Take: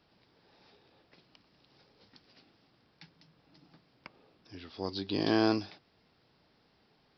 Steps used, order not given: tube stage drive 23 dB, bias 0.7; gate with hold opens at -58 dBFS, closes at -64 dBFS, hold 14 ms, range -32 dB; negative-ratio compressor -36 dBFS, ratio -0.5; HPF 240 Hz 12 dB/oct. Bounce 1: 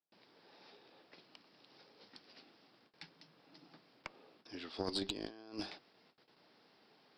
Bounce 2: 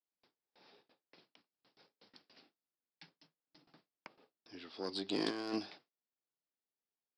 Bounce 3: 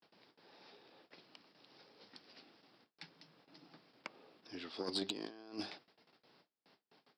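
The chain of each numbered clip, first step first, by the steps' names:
negative-ratio compressor > HPF > tube stage > gate with hold; tube stage > HPF > gate with hold > negative-ratio compressor; gate with hold > negative-ratio compressor > tube stage > HPF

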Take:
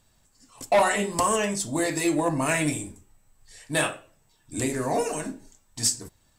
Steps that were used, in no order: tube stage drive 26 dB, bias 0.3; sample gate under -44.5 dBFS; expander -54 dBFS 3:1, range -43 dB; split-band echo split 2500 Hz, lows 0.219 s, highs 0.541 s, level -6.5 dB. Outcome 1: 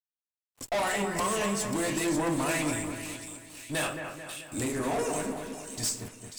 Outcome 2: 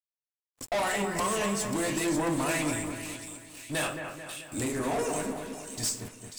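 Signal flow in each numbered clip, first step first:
sample gate > expander > tube stage > split-band echo; tube stage > sample gate > expander > split-band echo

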